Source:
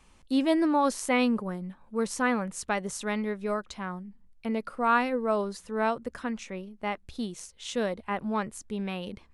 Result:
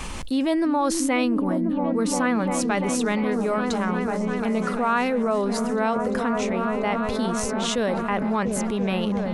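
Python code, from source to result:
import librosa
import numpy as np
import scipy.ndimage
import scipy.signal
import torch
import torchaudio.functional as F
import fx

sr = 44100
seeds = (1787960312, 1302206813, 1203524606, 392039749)

y = fx.echo_opening(x, sr, ms=345, hz=200, octaves=1, feedback_pct=70, wet_db=-3)
y = fx.env_flatten(y, sr, amount_pct=70)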